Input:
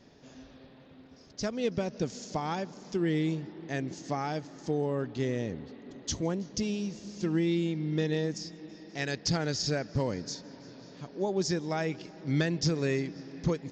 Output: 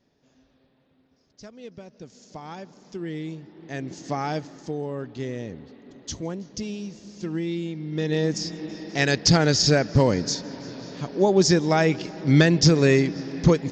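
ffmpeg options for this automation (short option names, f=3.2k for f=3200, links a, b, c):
-af "volume=18dB,afade=t=in:st=2.03:d=0.66:silence=0.446684,afade=t=in:st=3.48:d=0.87:silence=0.316228,afade=t=out:st=4.35:d=0.37:silence=0.473151,afade=t=in:st=7.91:d=0.64:silence=0.251189"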